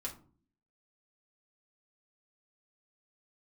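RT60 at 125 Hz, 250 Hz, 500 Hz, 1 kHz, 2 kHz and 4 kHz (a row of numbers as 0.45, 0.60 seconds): 0.65, 0.75, 0.50, 0.40, 0.25, 0.20 seconds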